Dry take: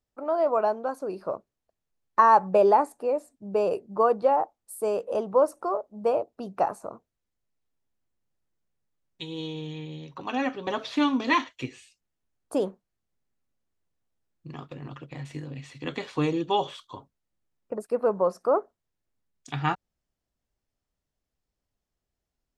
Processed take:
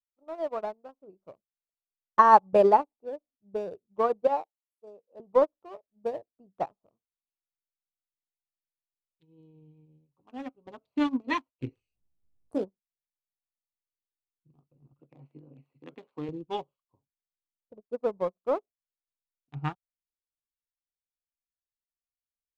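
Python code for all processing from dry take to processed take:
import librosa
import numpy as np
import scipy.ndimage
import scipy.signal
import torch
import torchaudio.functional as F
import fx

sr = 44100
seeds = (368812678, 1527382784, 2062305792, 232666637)

y = fx.chain(x, sr, fx.highpass(hz=360.0, slope=6),
    fx.band_widen(depth_pct=70), at=(4.27, 5.2))
y = fx.chain(y, sr, fx.high_shelf(hz=3900.0, db=-3.0),
    fx.doubler(ms=18.0, db=-7.5),
    fx.env_flatten(amount_pct=50), at=(11.61, 12.64))
y = fx.chain(y, sr, fx.bandpass_edges(low_hz=250.0, high_hz=3400.0),
    fx.env_flatten(amount_pct=50), at=(14.99, 16.29))
y = fx.wiener(y, sr, points=25)
y = fx.low_shelf(y, sr, hz=160.0, db=11.5)
y = fx.upward_expand(y, sr, threshold_db=-39.0, expansion=2.5)
y = y * librosa.db_to_amplitude(2.5)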